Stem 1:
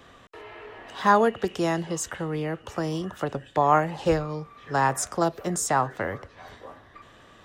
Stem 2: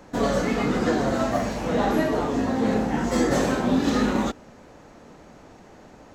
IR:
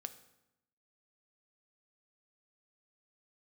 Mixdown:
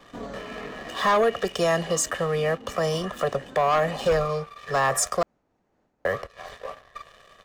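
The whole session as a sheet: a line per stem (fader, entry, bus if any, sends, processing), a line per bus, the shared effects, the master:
-3.0 dB, 0.00 s, muted 5.23–6.05, no send, comb 1.7 ms, depth 96%; sample leveller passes 2; bell 96 Hz -10.5 dB 1.6 oct
-6.0 dB, 0.00 s, no send, high shelf 3700 Hz -6.5 dB; noise-modulated level, depth 60%; auto duck -14 dB, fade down 1.00 s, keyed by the first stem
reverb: off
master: limiter -14.5 dBFS, peak gain reduction 7 dB

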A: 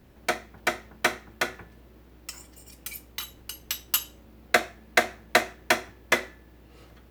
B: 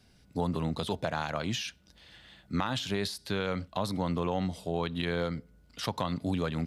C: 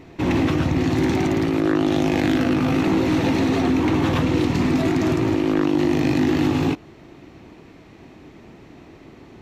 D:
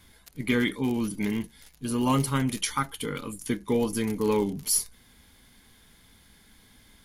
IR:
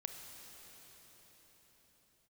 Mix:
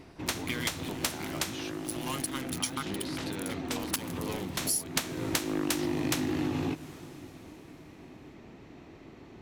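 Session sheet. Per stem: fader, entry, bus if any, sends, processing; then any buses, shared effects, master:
-2.0 dB, 0.00 s, muted 3.96–4.57, send -12 dB, spectral limiter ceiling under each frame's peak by 26 dB; low-pass opened by the level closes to 960 Hz, open at -27 dBFS
+1.5 dB, 0.00 s, no send, compressor, threshold -39 dBFS, peak gain reduction 13.5 dB
-7.0 dB, 0.00 s, send -13.5 dB, auto duck -18 dB, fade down 0.30 s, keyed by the fourth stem
-2.5 dB, 0.00 s, no send, tilt shelf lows -7.5 dB, about 1400 Hz; crossover distortion -31.5 dBFS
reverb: on, pre-delay 26 ms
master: compressor 3:1, threshold -29 dBFS, peak gain reduction 11 dB

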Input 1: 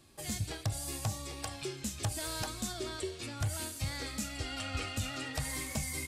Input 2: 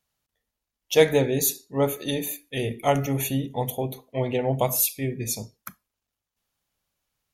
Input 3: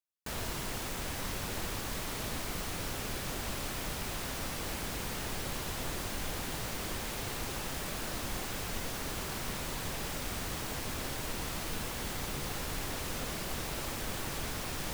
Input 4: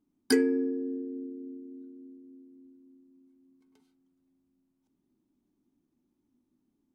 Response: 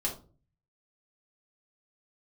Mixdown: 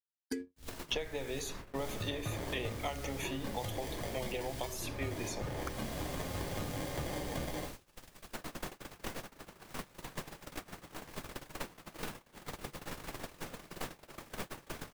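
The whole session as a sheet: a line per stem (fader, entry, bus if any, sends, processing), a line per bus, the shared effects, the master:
-8.0 dB, 1.60 s, send -4 dB, sample-and-hold 33×
-2.0 dB, 0.00 s, no send, LPF 5700 Hz 12 dB/oct; compressor, threshold -24 dBFS, peak gain reduction 12.5 dB; HPF 740 Hz 6 dB/oct
-13.0 dB, 0.30 s, send -17.5 dB, dry
-16.0 dB, 0.00 s, no send, Wiener smoothing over 9 samples; bell 920 Hz -9 dB 1.1 oct; auto duck -18 dB, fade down 1.40 s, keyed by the second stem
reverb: on, RT60 0.40 s, pre-delay 3 ms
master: gate -44 dBFS, range -56 dB; three-band squash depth 100%

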